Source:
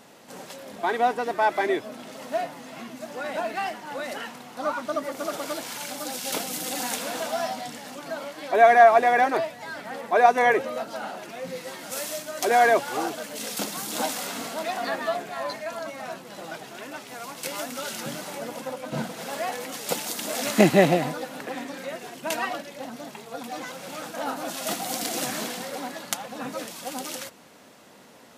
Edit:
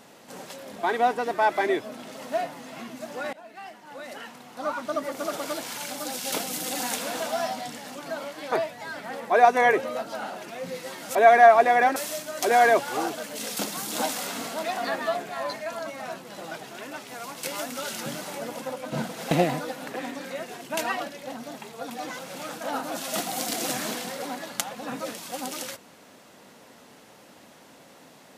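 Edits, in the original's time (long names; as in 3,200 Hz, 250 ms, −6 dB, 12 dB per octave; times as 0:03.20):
0:03.33–0:05.07: fade in, from −21.5 dB
0:08.52–0:09.33: move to 0:11.96
0:19.31–0:20.84: remove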